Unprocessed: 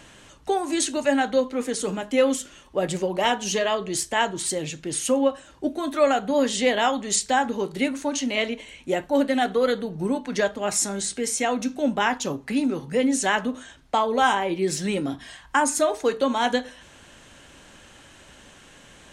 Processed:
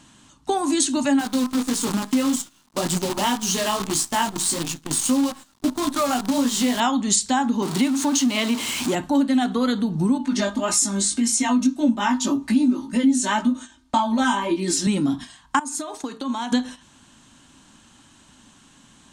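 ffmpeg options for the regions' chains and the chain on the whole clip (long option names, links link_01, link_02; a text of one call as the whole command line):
ffmpeg -i in.wav -filter_complex "[0:a]asettb=1/sr,asplit=3[link_01][link_02][link_03];[link_01]atrim=end=1.194[link_04];[link_02]atrim=start=1.19:end=6.8,asetpts=PTS-STARTPTS,afade=type=in:duration=0.004:curve=qsin,afade=type=out:start_time=5.606:duration=0.004:curve=qsin,lowshelf=frequency=110:gain=-4,flanger=delay=17:depth=3.4:speed=1.7,acrusher=bits=6:dc=4:mix=0:aa=0.000001[link_05];[link_03]atrim=start=6.796[link_06];[link_04][link_05]acrossfade=duration=0.004:curve1=hsin:curve2=qsin[link_07];[link_07][link_06]acrossfade=duration=0.004:curve1=qsin:curve2=hsin,asettb=1/sr,asplit=3[link_08][link_09][link_10];[link_08]atrim=end=7.624[link_11];[link_09]atrim=start=7.62:end=8.95,asetpts=PTS-STARTPTS,afade=type=in:duration=0.004:curve=qsin,afade=type=out:start_time=1.326:duration=0.004:curve=qsin,aeval=exprs='val(0)+0.5*0.0335*sgn(val(0))':channel_layout=same,highpass=frequency=240:poles=1[link_12];[link_10]atrim=start=8.946[link_13];[link_11][link_12]acrossfade=duration=0.004:curve1=hsin:curve2=qsin[link_14];[link_14][link_13]acrossfade=duration=0.004:curve1=qsin:curve2=hsin,asettb=1/sr,asplit=3[link_15][link_16][link_17];[link_15]atrim=end=10.184[link_18];[link_16]atrim=start=10.18:end=14.87,asetpts=PTS-STARTPTS,afade=type=in:duration=0.004:curve=qsin,afade=type=out:start_time=4.686:duration=0.004:curve=qsin,aecho=1:1:3.3:0.89,atrim=end_sample=206829,flanger=delay=17:depth=3.4:speed=1.8[link_19];[link_17]atrim=start=14.866[link_20];[link_18][link_19]acrossfade=duration=0.004:curve1=hsin:curve2=qsin[link_21];[link_21][link_20]acrossfade=duration=0.004:curve1=qsin:curve2=hsin,asettb=1/sr,asplit=3[link_22][link_23][link_24];[link_22]atrim=end=15.594[link_25];[link_23]atrim=start=15.59:end=16.52,asetpts=PTS-STARTPTS,afade=type=in:duration=0.004:curve=qsin,afade=type=out:start_time=0.926:duration=0.004:curve=qsin,lowshelf=frequency=120:gain=-9,acompressor=threshold=-33dB:ratio=10:attack=3.2:release=140:knee=1:detection=peak[link_26];[link_24]atrim=start=16.516[link_27];[link_25][link_26]acrossfade=duration=0.004:curve1=hsin:curve2=qsin[link_28];[link_28][link_27]acrossfade=duration=0.004:curve1=qsin:curve2=hsin,agate=range=-12dB:threshold=-39dB:ratio=16:detection=peak,equalizer=frequency=125:width_type=o:width=1:gain=4,equalizer=frequency=250:width_type=o:width=1:gain=12,equalizer=frequency=500:width_type=o:width=1:gain=-10,equalizer=frequency=1000:width_type=o:width=1:gain=8,equalizer=frequency=2000:width_type=o:width=1:gain=-4,equalizer=frequency=4000:width_type=o:width=1:gain=5,equalizer=frequency=8000:width_type=o:width=1:gain=7,acompressor=threshold=-25dB:ratio=2.5,volume=4.5dB" out.wav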